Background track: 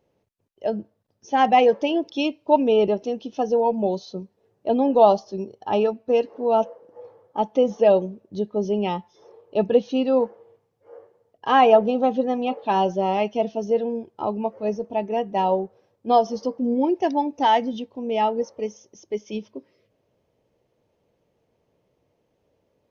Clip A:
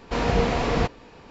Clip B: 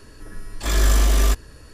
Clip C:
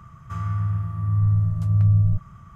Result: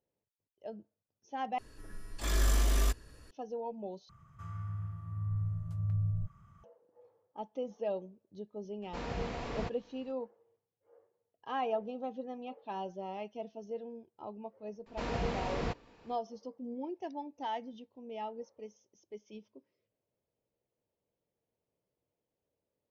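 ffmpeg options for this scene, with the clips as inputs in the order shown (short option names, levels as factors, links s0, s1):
-filter_complex "[1:a]asplit=2[s0][s1];[0:a]volume=0.112[s2];[3:a]acompressor=mode=upward:threshold=0.01:ratio=2.5:attack=3.2:release=140:knee=2.83:detection=peak[s3];[s2]asplit=3[s4][s5][s6];[s4]atrim=end=1.584[s7];[2:a]atrim=end=1.73,asetpts=PTS-STARTPTS,volume=0.282[s8];[s5]atrim=start=3.306:end=4.094[s9];[s3]atrim=end=2.55,asetpts=PTS-STARTPTS,volume=0.178[s10];[s6]atrim=start=6.636[s11];[s0]atrim=end=1.3,asetpts=PTS-STARTPTS,volume=0.168,afade=t=in:d=0.004:c=hsin,afade=t=out:st=1.296:d=0.004:c=hsin,adelay=388962S[s12];[s1]atrim=end=1.3,asetpts=PTS-STARTPTS,volume=0.237,afade=t=in:d=0.004:c=hsin,afade=t=out:st=1.296:d=0.004:c=hsin,adelay=14860[s13];[s7][s8]acrossfade=d=0.004:c1=hsin:c2=hsin[s14];[s14][s9]acrossfade=d=0.004:c1=hsin:c2=hsin[s15];[s15][s10]acrossfade=d=0.004:c1=hsin:c2=hsin[s16];[s16][s11]acrossfade=d=0.004:c1=hsin:c2=hsin[s17];[s17][s12][s13]amix=inputs=3:normalize=0"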